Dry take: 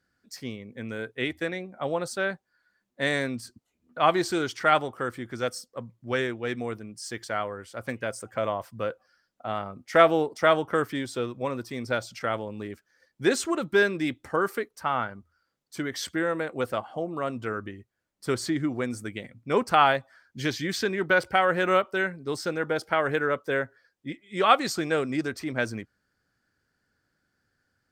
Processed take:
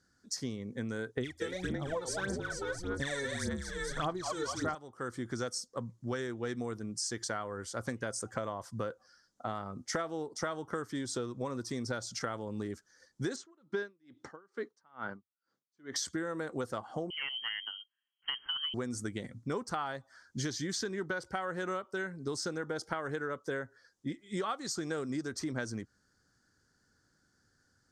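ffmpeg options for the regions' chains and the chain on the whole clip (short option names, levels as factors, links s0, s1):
-filter_complex "[0:a]asettb=1/sr,asplit=3[s0][s1][s2];[s0]atrim=end=1.174[s3];[s1]atrim=start=1.17:end=4.75,asetpts=PTS-STARTPTS,afade=t=in:d=0.004:c=qsin,afade=t=out:st=3.576:d=0.004:c=qsin,asplit=8[s4][s5][s6][s7][s8][s9][s10][s11];[s5]adelay=222,afreqshift=-36,volume=0.562[s12];[s6]adelay=444,afreqshift=-72,volume=0.316[s13];[s7]adelay=666,afreqshift=-108,volume=0.176[s14];[s8]adelay=888,afreqshift=-144,volume=0.0989[s15];[s9]adelay=1110,afreqshift=-180,volume=0.0556[s16];[s10]adelay=1332,afreqshift=-216,volume=0.0309[s17];[s11]adelay=1554,afreqshift=-252,volume=0.0174[s18];[s4][s12][s13][s14][s15][s16][s17][s18]amix=inputs=8:normalize=0,atrim=end_sample=157878,aphaser=in_gain=1:out_gain=1:delay=2.3:decay=0.78:speed=1.7:type=sinusoidal[s19];[s2]atrim=start=4.746[s20];[s3][s19]acrossfade=d=0.004:c1=hsin:c2=qsin[s21];[s21][s20]acrossfade=d=0.004:c1=qsin:c2=hsin,asettb=1/sr,asplit=3[s22][s23][s24];[s22]atrim=end=13.364[s25];[s23]atrim=start=13.36:end=15.96,asetpts=PTS-STARTPTS,afade=t=in:d=0.004:c=qsin,afade=t=out:st=2.596:d=0.004:c=qsin,highpass=170,lowpass=3900,aeval=exprs='val(0)*pow(10,-40*(0.5-0.5*cos(2*PI*2.3*n/s))/20)':c=same[s26];[s24]atrim=start=15.956[s27];[s25][s26]acrossfade=d=0.004:c1=hsin:c2=qsin[s28];[s28][s27]acrossfade=d=0.004:c1=qsin:c2=hsin,asettb=1/sr,asplit=3[s29][s30][s31];[s29]atrim=end=17.104[s32];[s30]atrim=start=17.1:end=18.74,asetpts=PTS-STARTPTS,afade=t=in:d=0.004:c=qsin,afade=t=out:st=1.636:d=0.004:c=qsin,adynamicsmooth=sensitivity=2:basefreq=1600,lowpass=f=2800:t=q:w=0.5098,lowpass=f=2800:t=q:w=0.6013,lowpass=f=2800:t=q:w=0.9,lowpass=f=2800:t=q:w=2.563,afreqshift=-3300[s33];[s31]atrim=start=18.736[s34];[s32][s33]acrossfade=d=0.004:c1=hsin:c2=qsin[s35];[s35][s34]acrossfade=d=0.004:c1=qsin:c2=hsin,equalizer=f=630:t=o:w=0.67:g=-5,equalizer=f=2500:t=o:w=0.67:g=-12,equalizer=f=6300:t=o:w=0.67:g=8,acompressor=threshold=0.0158:ratio=12,lowpass=f=11000:w=0.5412,lowpass=f=11000:w=1.3066,volume=1.5"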